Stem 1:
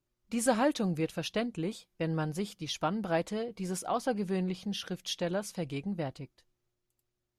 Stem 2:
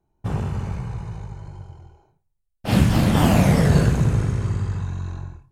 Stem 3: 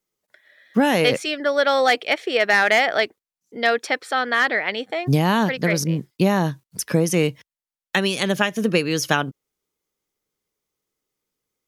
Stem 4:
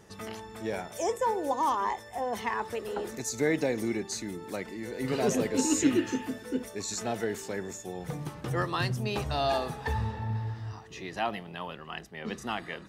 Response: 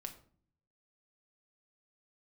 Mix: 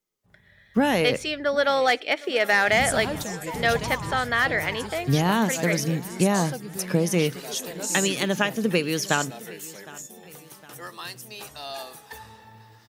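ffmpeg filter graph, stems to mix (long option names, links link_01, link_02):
-filter_complex "[0:a]equalizer=frequency=8900:width=0.36:gain=13,adelay=2450,volume=-5.5dB[link_01];[1:a]volume=-18dB,asplit=2[link_02][link_03];[link_03]volume=-18dB[link_04];[2:a]volume=-4.5dB,asplit=4[link_05][link_06][link_07][link_08];[link_06]volume=-12.5dB[link_09];[link_07]volume=-19.5dB[link_10];[3:a]aemphasis=mode=production:type=riaa,adelay=2250,volume=-8dB[link_11];[link_08]apad=whole_len=243391[link_12];[link_02][link_12]sidechaingate=range=-33dB:threshold=-47dB:ratio=16:detection=peak[link_13];[4:a]atrim=start_sample=2205[link_14];[link_04][link_09]amix=inputs=2:normalize=0[link_15];[link_15][link_14]afir=irnorm=-1:irlink=0[link_16];[link_10]aecho=0:1:761|1522|2283|3044|3805|4566|5327:1|0.49|0.24|0.118|0.0576|0.0282|0.0138[link_17];[link_01][link_13][link_05][link_11][link_16][link_17]amix=inputs=6:normalize=0"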